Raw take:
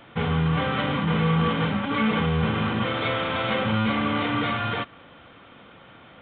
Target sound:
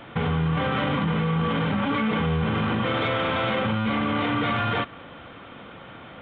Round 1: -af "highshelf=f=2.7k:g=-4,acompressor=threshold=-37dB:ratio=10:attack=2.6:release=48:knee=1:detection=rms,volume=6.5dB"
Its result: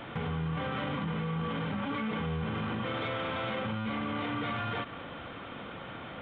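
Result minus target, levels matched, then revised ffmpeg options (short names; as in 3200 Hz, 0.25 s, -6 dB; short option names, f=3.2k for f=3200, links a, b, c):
compressor: peak gain reduction +9.5 dB
-af "highshelf=f=2.7k:g=-4,acompressor=threshold=-26.5dB:ratio=10:attack=2.6:release=48:knee=1:detection=rms,volume=6.5dB"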